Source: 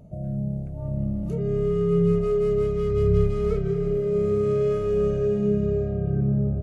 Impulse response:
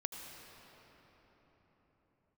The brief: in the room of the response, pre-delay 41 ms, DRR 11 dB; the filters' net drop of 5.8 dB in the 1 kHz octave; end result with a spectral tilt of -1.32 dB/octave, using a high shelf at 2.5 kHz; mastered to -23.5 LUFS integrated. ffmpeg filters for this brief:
-filter_complex "[0:a]equalizer=f=1000:t=o:g=-7.5,highshelf=f=2500:g=-3.5,asplit=2[s0][s1];[1:a]atrim=start_sample=2205,adelay=41[s2];[s1][s2]afir=irnorm=-1:irlink=0,volume=0.299[s3];[s0][s3]amix=inputs=2:normalize=0"

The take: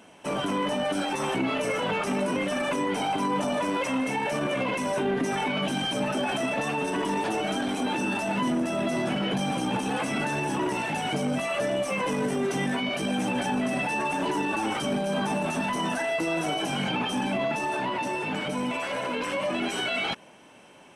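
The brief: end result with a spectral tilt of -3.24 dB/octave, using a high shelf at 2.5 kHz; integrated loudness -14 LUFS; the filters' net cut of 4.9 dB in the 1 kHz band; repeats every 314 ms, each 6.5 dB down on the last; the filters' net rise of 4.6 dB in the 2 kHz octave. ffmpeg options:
-af "equalizer=f=1000:t=o:g=-8,equalizer=f=2000:t=o:g=4.5,highshelf=f=2500:g=6,aecho=1:1:314|628|942|1256|1570|1884:0.473|0.222|0.105|0.0491|0.0231|0.0109,volume=3.55"

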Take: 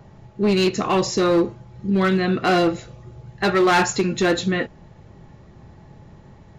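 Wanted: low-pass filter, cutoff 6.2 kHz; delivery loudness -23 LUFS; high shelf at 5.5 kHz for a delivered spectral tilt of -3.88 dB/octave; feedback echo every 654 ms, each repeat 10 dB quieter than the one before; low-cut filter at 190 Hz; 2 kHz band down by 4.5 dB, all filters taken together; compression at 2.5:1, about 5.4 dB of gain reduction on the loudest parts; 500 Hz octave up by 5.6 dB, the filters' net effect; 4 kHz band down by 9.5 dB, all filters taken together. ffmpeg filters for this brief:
-af "highpass=190,lowpass=6200,equalizer=f=500:t=o:g=8.5,equalizer=f=2000:t=o:g=-4.5,equalizer=f=4000:t=o:g=-7.5,highshelf=f=5500:g=-6.5,acompressor=threshold=0.141:ratio=2.5,aecho=1:1:654|1308|1962|2616:0.316|0.101|0.0324|0.0104,volume=0.841"

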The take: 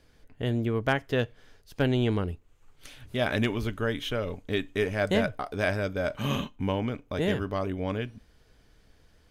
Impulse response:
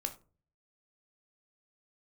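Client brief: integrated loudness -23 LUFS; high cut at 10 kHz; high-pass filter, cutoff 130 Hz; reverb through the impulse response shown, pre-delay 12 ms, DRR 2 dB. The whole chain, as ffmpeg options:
-filter_complex "[0:a]highpass=130,lowpass=10000,asplit=2[s0][s1];[1:a]atrim=start_sample=2205,adelay=12[s2];[s1][s2]afir=irnorm=-1:irlink=0,volume=0.75[s3];[s0][s3]amix=inputs=2:normalize=0,volume=1.78"

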